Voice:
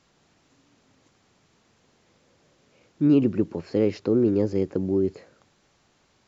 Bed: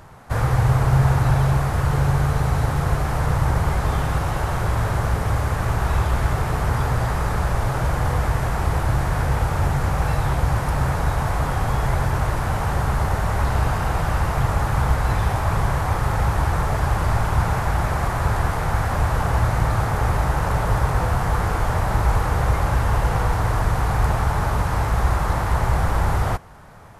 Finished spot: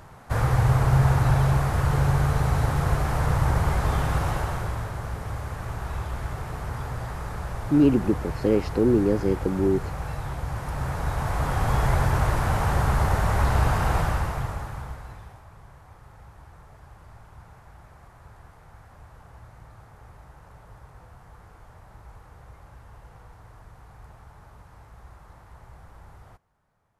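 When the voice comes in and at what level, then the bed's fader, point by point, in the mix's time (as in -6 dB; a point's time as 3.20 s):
4.70 s, +0.5 dB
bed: 4.30 s -2.5 dB
4.92 s -11 dB
10.45 s -11 dB
11.77 s -1 dB
13.98 s -1 dB
15.50 s -28 dB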